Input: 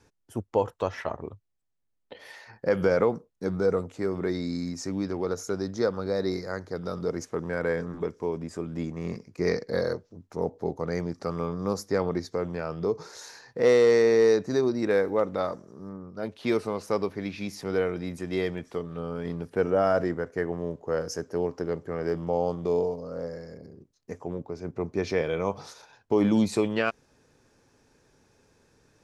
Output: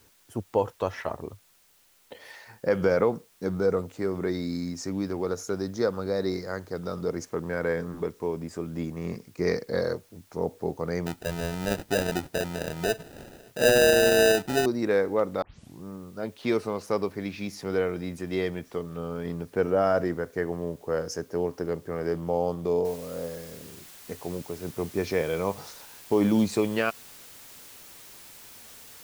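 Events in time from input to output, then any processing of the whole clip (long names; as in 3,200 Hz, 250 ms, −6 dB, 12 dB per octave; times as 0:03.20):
0:11.06–0:14.66: sample-rate reduction 1,100 Hz
0:15.42: tape start 0.42 s
0:22.85: noise floor change −62 dB −48 dB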